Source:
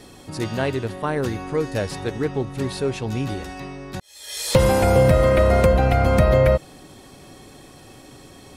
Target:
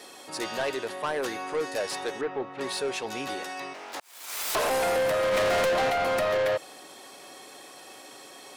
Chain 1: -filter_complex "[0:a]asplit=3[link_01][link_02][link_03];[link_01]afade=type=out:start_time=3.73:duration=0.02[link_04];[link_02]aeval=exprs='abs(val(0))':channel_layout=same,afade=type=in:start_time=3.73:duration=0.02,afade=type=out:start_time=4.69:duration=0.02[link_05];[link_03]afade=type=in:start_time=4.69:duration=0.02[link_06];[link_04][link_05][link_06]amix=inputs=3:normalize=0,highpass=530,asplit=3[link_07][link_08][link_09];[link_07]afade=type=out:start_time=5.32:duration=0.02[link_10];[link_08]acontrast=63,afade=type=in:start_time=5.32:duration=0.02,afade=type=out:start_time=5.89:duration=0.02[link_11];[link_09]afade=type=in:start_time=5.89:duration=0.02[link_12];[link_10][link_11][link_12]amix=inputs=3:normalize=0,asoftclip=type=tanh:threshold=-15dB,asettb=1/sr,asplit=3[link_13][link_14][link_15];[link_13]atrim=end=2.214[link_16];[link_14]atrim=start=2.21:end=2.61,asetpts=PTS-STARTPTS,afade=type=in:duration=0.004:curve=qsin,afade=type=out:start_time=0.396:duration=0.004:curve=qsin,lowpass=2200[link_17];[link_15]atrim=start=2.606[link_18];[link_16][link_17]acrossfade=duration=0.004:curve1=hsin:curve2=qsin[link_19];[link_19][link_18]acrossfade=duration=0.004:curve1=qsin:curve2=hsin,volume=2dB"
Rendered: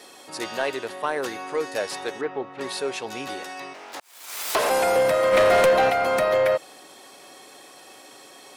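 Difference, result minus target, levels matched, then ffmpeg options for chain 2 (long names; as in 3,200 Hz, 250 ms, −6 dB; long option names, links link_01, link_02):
soft clipping: distortion −7 dB
-filter_complex "[0:a]asplit=3[link_01][link_02][link_03];[link_01]afade=type=out:start_time=3.73:duration=0.02[link_04];[link_02]aeval=exprs='abs(val(0))':channel_layout=same,afade=type=in:start_time=3.73:duration=0.02,afade=type=out:start_time=4.69:duration=0.02[link_05];[link_03]afade=type=in:start_time=4.69:duration=0.02[link_06];[link_04][link_05][link_06]amix=inputs=3:normalize=0,highpass=530,asplit=3[link_07][link_08][link_09];[link_07]afade=type=out:start_time=5.32:duration=0.02[link_10];[link_08]acontrast=63,afade=type=in:start_time=5.32:duration=0.02,afade=type=out:start_time=5.89:duration=0.02[link_11];[link_09]afade=type=in:start_time=5.89:duration=0.02[link_12];[link_10][link_11][link_12]amix=inputs=3:normalize=0,asoftclip=type=tanh:threshold=-24.5dB,asettb=1/sr,asplit=3[link_13][link_14][link_15];[link_13]atrim=end=2.214[link_16];[link_14]atrim=start=2.21:end=2.61,asetpts=PTS-STARTPTS,afade=type=in:duration=0.004:curve=qsin,afade=type=out:start_time=0.396:duration=0.004:curve=qsin,lowpass=2200[link_17];[link_15]atrim=start=2.606[link_18];[link_16][link_17]acrossfade=duration=0.004:curve1=hsin:curve2=qsin[link_19];[link_19][link_18]acrossfade=duration=0.004:curve1=qsin:curve2=hsin,volume=2dB"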